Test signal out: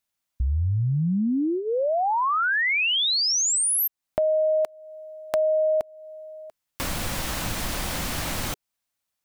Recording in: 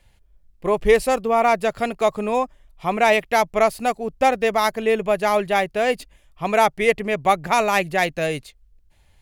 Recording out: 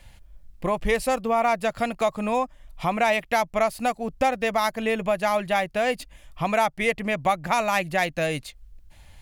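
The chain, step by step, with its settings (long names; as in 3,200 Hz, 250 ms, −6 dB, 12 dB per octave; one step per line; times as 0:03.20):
parametric band 410 Hz −13.5 dB 0.21 octaves
downward compressor 2 to 1, threshold −37 dBFS
level +8 dB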